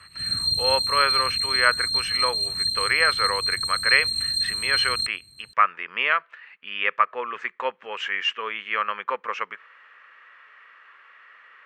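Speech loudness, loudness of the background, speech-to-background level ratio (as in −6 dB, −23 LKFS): −25.0 LKFS, −22.5 LKFS, −2.5 dB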